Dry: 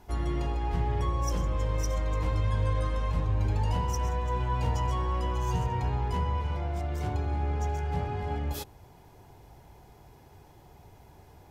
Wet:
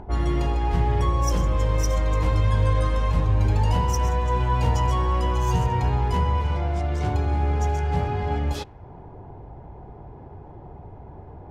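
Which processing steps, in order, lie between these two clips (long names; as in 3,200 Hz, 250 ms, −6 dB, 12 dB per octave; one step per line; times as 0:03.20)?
low-pass that shuts in the quiet parts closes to 790 Hz, open at −25 dBFS
upward compression, threshold −40 dBFS
level +7 dB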